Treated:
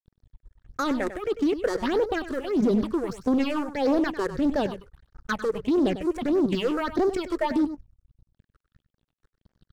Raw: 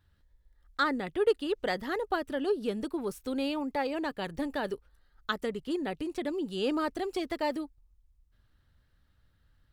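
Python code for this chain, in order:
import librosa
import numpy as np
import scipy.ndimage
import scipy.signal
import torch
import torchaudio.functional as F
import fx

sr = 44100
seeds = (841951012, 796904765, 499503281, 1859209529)

p1 = scipy.signal.sosfilt(scipy.signal.butter(2, 10000.0, 'lowpass', fs=sr, output='sos'), x)
p2 = fx.high_shelf(p1, sr, hz=7600.0, db=-11.0)
p3 = fx.notch(p2, sr, hz=2000.0, q=12.0)
p4 = fx.over_compress(p3, sr, threshold_db=-38.0, ratio=-1.0)
p5 = p3 + F.gain(torch.from_numpy(p4), -2.5).numpy()
p6 = fx.leveller(p5, sr, passes=3)
p7 = fx.level_steps(p6, sr, step_db=11)
p8 = fx.phaser_stages(p7, sr, stages=6, low_hz=180.0, high_hz=3300.0, hz=1.6, feedback_pct=40)
p9 = np.sign(p8) * np.maximum(np.abs(p8) - 10.0 ** (-59.5 / 20.0), 0.0)
p10 = p9 + 10.0 ** (-12.0 / 20.0) * np.pad(p9, (int(98 * sr / 1000.0), 0))[:len(p9)]
y = fx.doppler_dist(p10, sr, depth_ms=0.28)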